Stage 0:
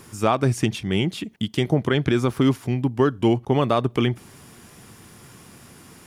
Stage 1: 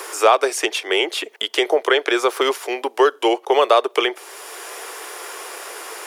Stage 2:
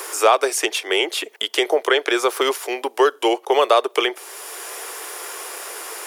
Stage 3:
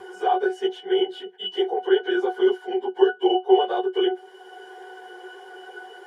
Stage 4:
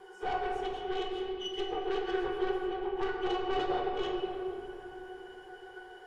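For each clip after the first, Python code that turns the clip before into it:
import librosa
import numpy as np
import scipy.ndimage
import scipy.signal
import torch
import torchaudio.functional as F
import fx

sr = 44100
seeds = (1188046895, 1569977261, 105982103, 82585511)

y1 = scipy.signal.sosfilt(scipy.signal.butter(8, 400.0, 'highpass', fs=sr, output='sos'), x)
y1 = fx.band_squash(y1, sr, depth_pct=40)
y1 = y1 * librosa.db_to_amplitude(9.0)
y2 = fx.high_shelf(y1, sr, hz=7800.0, db=7.5)
y2 = y2 * librosa.db_to_amplitude(-1.0)
y3 = fx.phase_scramble(y2, sr, seeds[0], window_ms=50)
y3 = fx.octave_resonator(y3, sr, note='F#', decay_s=0.14)
y3 = y3 * librosa.db_to_amplitude(8.0)
y4 = fx.tube_stage(y3, sr, drive_db=21.0, bias=0.65)
y4 = fx.room_shoebox(y4, sr, seeds[1], volume_m3=190.0, walls='hard', distance_m=0.5)
y4 = y4 * librosa.db_to_amplitude(-8.0)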